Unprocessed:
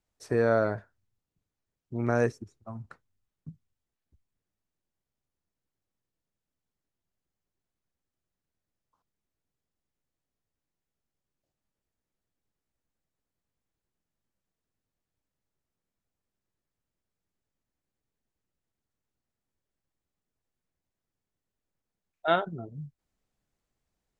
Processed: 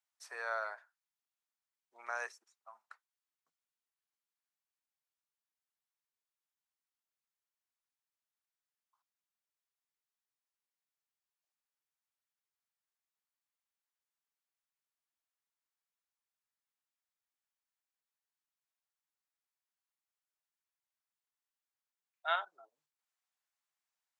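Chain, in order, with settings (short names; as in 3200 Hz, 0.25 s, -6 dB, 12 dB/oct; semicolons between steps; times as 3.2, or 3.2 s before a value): HPF 870 Hz 24 dB/oct; gain -4.5 dB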